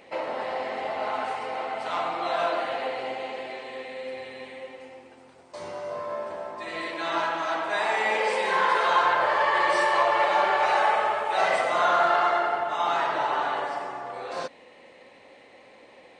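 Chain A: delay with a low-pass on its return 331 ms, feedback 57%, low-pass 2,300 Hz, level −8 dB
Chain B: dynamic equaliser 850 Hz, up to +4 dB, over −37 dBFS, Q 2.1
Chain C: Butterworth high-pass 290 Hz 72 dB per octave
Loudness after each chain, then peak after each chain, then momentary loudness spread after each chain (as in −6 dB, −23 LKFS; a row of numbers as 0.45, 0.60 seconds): −24.5, −23.0, −25.5 LKFS; −8.5, −7.0, −9.0 dBFS; 17, 17, 15 LU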